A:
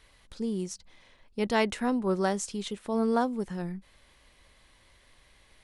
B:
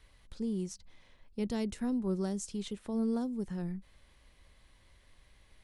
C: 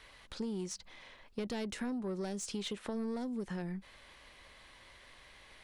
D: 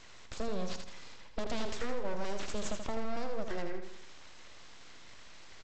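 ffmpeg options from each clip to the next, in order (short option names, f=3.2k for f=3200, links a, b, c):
-filter_complex "[0:a]lowshelf=f=200:g=8,acrossover=split=410|4200[a][b][c];[b]acompressor=threshold=-39dB:ratio=6[d];[a][d][c]amix=inputs=3:normalize=0,volume=-6dB"
-filter_complex "[0:a]asplit=2[a][b];[b]highpass=f=720:p=1,volume=17dB,asoftclip=type=tanh:threshold=-23dB[c];[a][c]amix=inputs=2:normalize=0,lowpass=f=3.6k:p=1,volume=-6dB,acompressor=threshold=-36dB:ratio=6,volume=1dB"
-af "aresample=16000,aeval=exprs='abs(val(0))':c=same,aresample=44100,aecho=1:1:81|162|243|324|405|486:0.447|0.21|0.0987|0.0464|0.0218|0.0102,volume=4.5dB"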